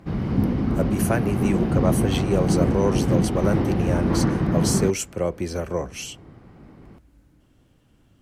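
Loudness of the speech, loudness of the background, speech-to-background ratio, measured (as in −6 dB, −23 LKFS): −26.5 LKFS, −23.0 LKFS, −3.5 dB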